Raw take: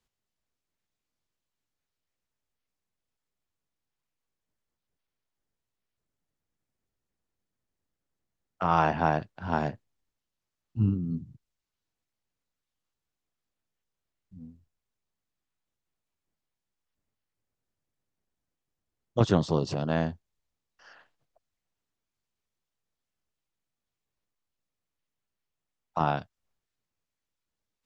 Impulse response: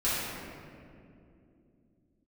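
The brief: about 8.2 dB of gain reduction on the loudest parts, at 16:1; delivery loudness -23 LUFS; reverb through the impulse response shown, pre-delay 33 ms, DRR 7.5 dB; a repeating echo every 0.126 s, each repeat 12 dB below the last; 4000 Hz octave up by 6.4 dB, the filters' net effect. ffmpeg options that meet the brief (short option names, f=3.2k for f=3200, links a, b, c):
-filter_complex "[0:a]equalizer=f=4k:t=o:g=8,acompressor=threshold=-24dB:ratio=16,aecho=1:1:126|252|378:0.251|0.0628|0.0157,asplit=2[a][b];[1:a]atrim=start_sample=2205,adelay=33[c];[b][c]afir=irnorm=-1:irlink=0,volume=-18.5dB[d];[a][d]amix=inputs=2:normalize=0,volume=10.5dB"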